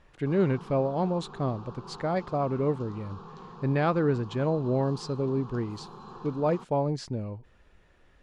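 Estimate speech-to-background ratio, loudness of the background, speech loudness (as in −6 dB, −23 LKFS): 16.5 dB, −45.5 LKFS, −29.0 LKFS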